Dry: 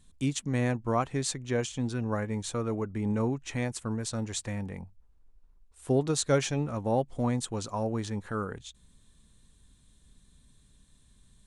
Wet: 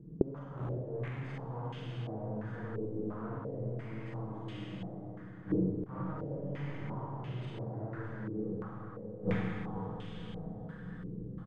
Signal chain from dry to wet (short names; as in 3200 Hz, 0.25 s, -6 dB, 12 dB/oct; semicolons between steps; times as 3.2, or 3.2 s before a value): minimum comb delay 0.62 ms; HPF 97 Hz 12 dB/oct; tilt shelf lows +8.5 dB, about 660 Hz; notches 50/100/150/200 Hz; comb 6.3 ms, depth 95%; sample leveller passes 5; compressor 2.5:1, threshold -41 dBFS, peak gain reduction 19.5 dB; Schroeder reverb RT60 1.9 s, combs from 33 ms, DRR -6.5 dB; flipped gate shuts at -34 dBFS, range -34 dB; on a send: diffused feedback echo 0.498 s, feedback 55%, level -7 dB; on the sum: stepped low-pass 2.9 Hz 400–2900 Hz; gain +16 dB